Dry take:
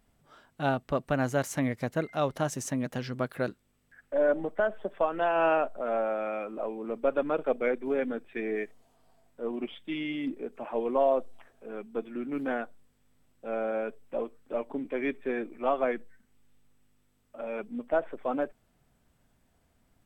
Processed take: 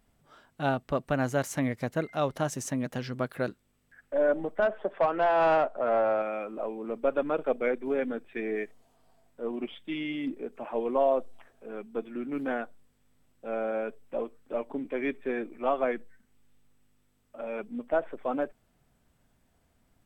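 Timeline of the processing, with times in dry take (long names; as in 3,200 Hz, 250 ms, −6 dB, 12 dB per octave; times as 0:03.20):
0:04.62–0:06.22: mid-hump overdrive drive 15 dB, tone 1,200 Hz, clips at −14.5 dBFS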